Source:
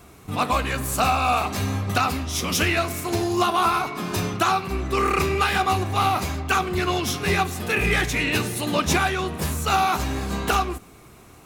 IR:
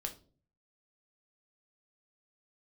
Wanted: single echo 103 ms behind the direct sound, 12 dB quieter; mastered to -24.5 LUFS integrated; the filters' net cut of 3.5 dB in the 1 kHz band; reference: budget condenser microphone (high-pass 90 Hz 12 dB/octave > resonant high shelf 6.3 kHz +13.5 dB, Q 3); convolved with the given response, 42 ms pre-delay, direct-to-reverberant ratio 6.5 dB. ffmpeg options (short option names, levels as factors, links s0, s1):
-filter_complex "[0:a]equalizer=f=1000:t=o:g=-4.5,aecho=1:1:103:0.251,asplit=2[s0][s1];[1:a]atrim=start_sample=2205,adelay=42[s2];[s1][s2]afir=irnorm=-1:irlink=0,volume=0.531[s3];[s0][s3]amix=inputs=2:normalize=0,highpass=90,highshelf=f=6300:t=q:w=3:g=13.5,volume=0.422"